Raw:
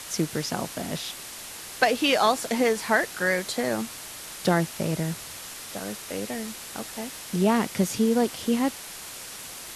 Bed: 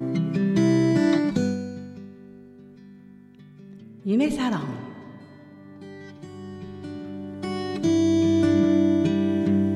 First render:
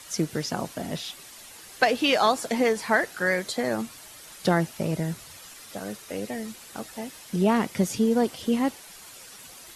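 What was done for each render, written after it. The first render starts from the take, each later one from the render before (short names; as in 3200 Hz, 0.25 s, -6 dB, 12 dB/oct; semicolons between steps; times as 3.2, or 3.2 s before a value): denoiser 9 dB, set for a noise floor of -40 dBFS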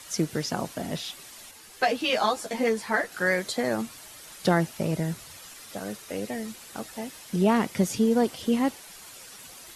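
1.51–3.12 ensemble effect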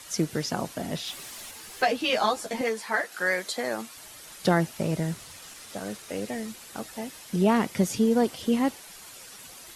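1.07–1.84 G.711 law mismatch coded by mu; 2.61–3.97 HPF 510 Hz 6 dB/oct; 4.79–6.46 CVSD 64 kbps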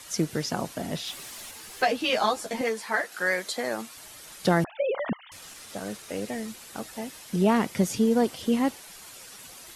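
4.64–5.32 sine-wave speech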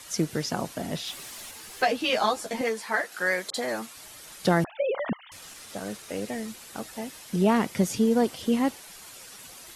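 3.5–4.02 dispersion highs, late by 44 ms, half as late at 1700 Hz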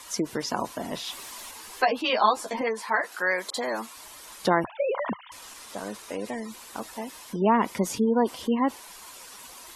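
thirty-one-band EQ 100 Hz -11 dB, 160 Hz -11 dB, 1000 Hz +10 dB; spectral gate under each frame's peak -30 dB strong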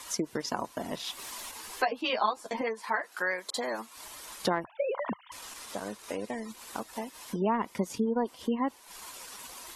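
compressor 1.5:1, threshold -37 dBFS, peak gain reduction 8 dB; transient shaper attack +2 dB, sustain -7 dB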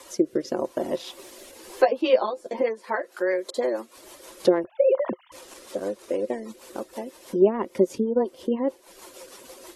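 small resonant body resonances 370/520 Hz, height 18 dB, ringing for 50 ms; rotary speaker horn 0.9 Hz, later 6.3 Hz, at 2.31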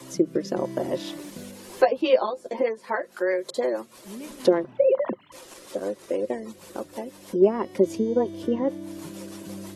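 add bed -17.5 dB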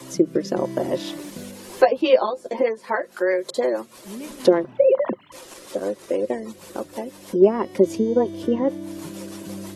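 gain +3.5 dB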